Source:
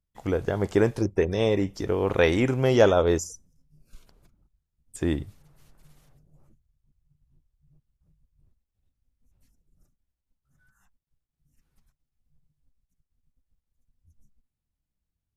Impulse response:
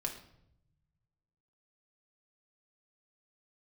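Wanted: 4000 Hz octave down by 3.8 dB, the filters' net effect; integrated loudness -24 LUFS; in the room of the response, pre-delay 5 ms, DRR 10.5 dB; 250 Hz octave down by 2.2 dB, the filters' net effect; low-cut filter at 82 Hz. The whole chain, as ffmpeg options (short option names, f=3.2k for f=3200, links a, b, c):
-filter_complex "[0:a]highpass=82,equalizer=f=250:t=o:g=-3,equalizer=f=4k:t=o:g=-5,asplit=2[a][b];[1:a]atrim=start_sample=2205,adelay=5[c];[b][c]afir=irnorm=-1:irlink=0,volume=-11.5dB[d];[a][d]amix=inputs=2:normalize=0,volume=1dB"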